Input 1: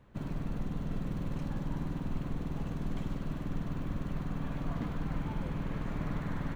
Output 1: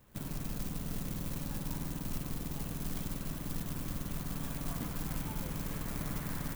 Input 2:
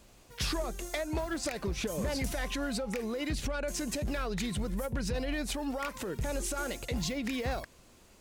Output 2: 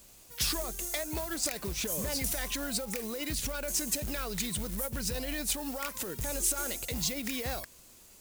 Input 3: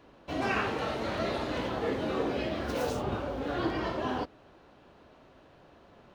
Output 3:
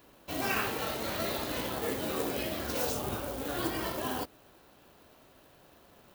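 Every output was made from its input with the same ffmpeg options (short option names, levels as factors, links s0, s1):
-af "acrusher=bits=5:mode=log:mix=0:aa=0.000001,aemphasis=mode=production:type=75kf,volume=0.668"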